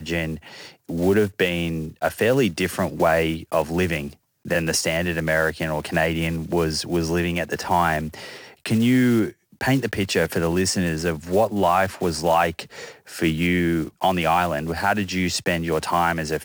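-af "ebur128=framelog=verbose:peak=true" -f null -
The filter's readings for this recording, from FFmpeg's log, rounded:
Integrated loudness:
  I:         -22.1 LUFS
  Threshold: -32.4 LUFS
Loudness range:
  LRA:         1.5 LU
  Threshold: -42.3 LUFS
  LRA low:   -23.1 LUFS
  LRA high:  -21.6 LUFS
True peak:
  Peak:       -7.4 dBFS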